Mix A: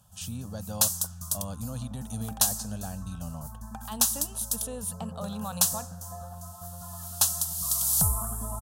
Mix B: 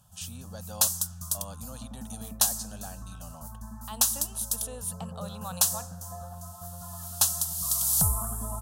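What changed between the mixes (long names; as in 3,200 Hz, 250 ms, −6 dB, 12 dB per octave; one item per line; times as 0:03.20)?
speech: add high-pass filter 580 Hz 6 dB per octave
second sound: muted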